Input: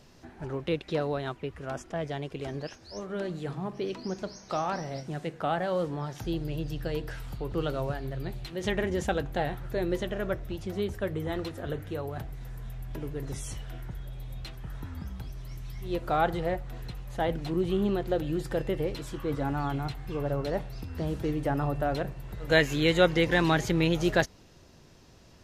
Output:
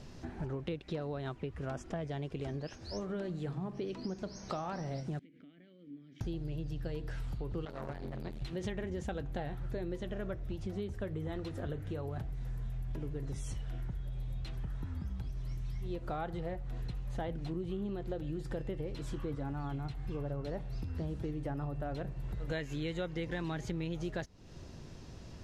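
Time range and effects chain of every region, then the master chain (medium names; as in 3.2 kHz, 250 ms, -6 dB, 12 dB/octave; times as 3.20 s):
5.19–6.21 s: compression 10:1, threshold -41 dBFS + vowel filter i
7.65–8.42 s: bass shelf 350 Hz -6.5 dB + transformer saturation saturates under 1 kHz
whole clip: low-pass 9.8 kHz 12 dB/octave; bass shelf 300 Hz +8 dB; compression 6:1, threshold -37 dBFS; trim +1 dB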